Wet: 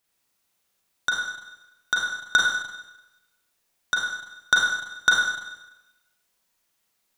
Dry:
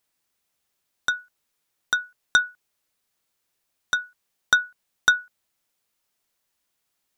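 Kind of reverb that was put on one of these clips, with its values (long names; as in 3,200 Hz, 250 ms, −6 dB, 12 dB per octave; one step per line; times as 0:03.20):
four-comb reverb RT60 0.99 s, combs from 33 ms, DRR −2.5 dB
level −1 dB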